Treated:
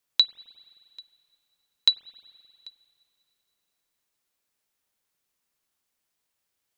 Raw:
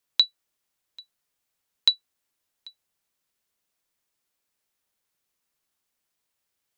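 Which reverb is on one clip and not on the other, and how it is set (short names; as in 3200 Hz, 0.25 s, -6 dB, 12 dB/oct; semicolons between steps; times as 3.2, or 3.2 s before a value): spring tank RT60 2.6 s, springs 44/52 ms, chirp 65 ms, DRR 17.5 dB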